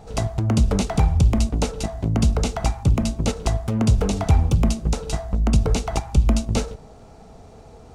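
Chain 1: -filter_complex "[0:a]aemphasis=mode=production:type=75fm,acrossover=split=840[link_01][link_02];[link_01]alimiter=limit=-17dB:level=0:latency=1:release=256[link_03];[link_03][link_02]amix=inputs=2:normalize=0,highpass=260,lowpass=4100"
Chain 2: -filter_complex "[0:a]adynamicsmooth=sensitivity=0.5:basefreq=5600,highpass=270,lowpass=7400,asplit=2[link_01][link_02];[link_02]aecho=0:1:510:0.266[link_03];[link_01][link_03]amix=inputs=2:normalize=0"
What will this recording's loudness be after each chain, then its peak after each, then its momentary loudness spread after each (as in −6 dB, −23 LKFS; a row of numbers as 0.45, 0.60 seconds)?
−31.0, −29.5 LKFS; −10.5, −11.5 dBFS; 19, 12 LU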